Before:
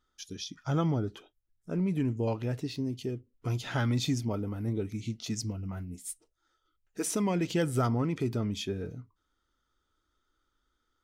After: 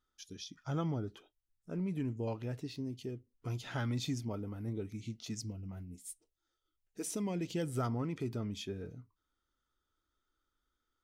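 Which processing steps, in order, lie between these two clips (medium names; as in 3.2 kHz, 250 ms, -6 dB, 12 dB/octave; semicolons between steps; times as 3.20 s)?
5.41–7.72 s: peaking EQ 1.3 kHz -6.5 dB 1.4 oct; trim -7 dB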